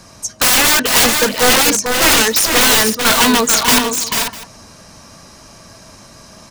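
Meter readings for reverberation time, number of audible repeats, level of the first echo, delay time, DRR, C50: none, 3, -6.0 dB, 0.44 s, none, none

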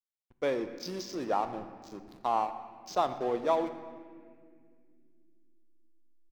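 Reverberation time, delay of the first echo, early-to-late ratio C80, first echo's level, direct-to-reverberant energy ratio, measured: 2.2 s, 0.117 s, 11.0 dB, -20.0 dB, 9.0 dB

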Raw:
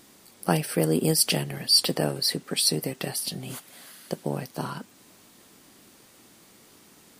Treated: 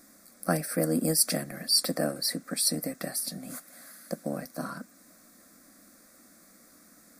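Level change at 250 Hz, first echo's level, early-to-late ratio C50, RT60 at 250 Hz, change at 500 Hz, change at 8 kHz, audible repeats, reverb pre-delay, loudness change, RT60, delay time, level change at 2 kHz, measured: -2.5 dB, none, none, none, -3.5 dB, -1.0 dB, none, none, -3.5 dB, none, none, -3.5 dB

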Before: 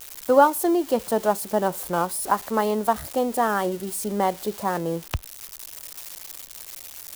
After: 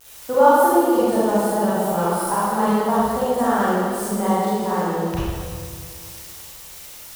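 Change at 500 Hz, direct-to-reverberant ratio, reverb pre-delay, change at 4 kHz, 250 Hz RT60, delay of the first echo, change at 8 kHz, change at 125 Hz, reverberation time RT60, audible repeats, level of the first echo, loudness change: +4.0 dB, -10.5 dB, 30 ms, +2.0 dB, 2.4 s, none, +1.0 dB, +7.0 dB, 2.0 s, none, none, +4.0 dB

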